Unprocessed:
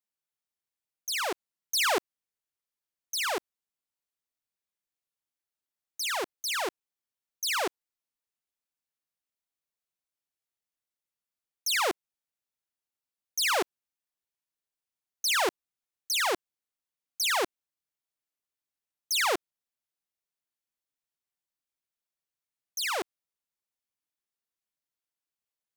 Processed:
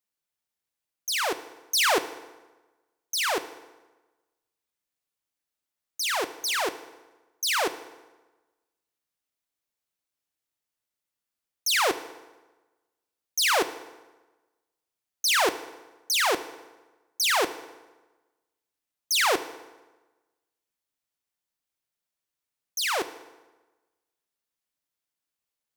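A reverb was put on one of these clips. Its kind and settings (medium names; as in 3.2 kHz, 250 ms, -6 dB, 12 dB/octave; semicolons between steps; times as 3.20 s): FDN reverb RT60 1.2 s, low-frequency decay 1×, high-frequency decay 0.75×, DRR 11 dB; trim +3.5 dB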